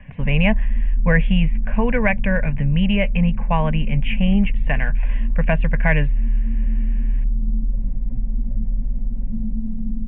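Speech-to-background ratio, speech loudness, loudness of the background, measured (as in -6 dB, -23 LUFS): 4.0 dB, -21.5 LUFS, -25.5 LUFS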